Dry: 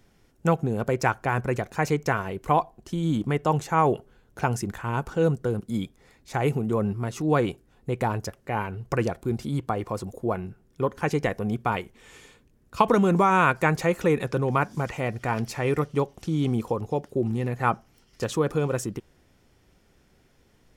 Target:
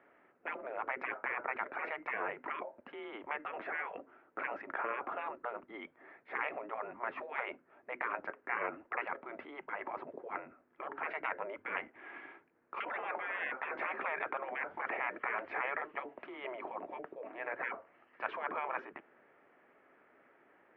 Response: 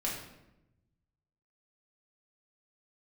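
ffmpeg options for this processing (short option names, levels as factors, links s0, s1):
-af "afftfilt=real='re*lt(hypot(re,im),0.0708)':imag='im*lt(hypot(re,im),0.0708)':win_size=1024:overlap=0.75,highpass=f=510:t=q:w=0.5412,highpass=f=510:t=q:w=1.307,lowpass=f=2300:t=q:w=0.5176,lowpass=f=2300:t=q:w=0.7071,lowpass=f=2300:t=q:w=1.932,afreqshift=-130,volume=1.68"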